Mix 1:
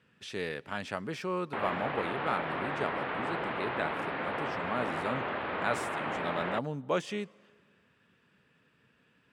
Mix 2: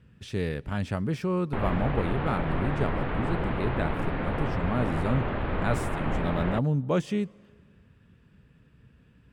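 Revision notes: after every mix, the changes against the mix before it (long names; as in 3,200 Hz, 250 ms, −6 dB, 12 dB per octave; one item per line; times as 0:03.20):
master: remove meter weighting curve A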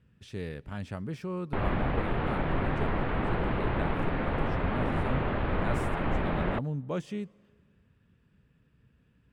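speech −7.5 dB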